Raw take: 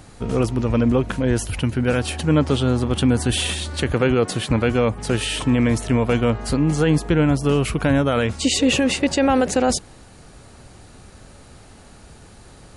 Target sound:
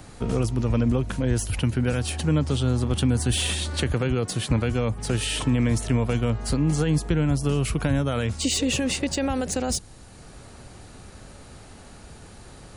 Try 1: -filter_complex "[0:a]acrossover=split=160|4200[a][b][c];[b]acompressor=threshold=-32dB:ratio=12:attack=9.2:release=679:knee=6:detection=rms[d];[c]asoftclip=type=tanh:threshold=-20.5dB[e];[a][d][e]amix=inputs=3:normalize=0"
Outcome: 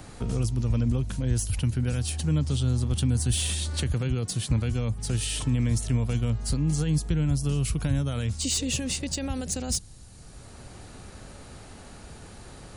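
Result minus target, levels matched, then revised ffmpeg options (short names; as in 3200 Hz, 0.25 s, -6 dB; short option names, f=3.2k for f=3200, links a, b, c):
compressor: peak gain reduction +10 dB
-filter_complex "[0:a]acrossover=split=160|4200[a][b][c];[b]acompressor=threshold=-21dB:ratio=12:attack=9.2:release=679:knee=6:detection=rms[d];[c]asoftclip=type=tanh:threshold=-20.5dB[e];[a][d][e]amix=inputs=3:normalize=0"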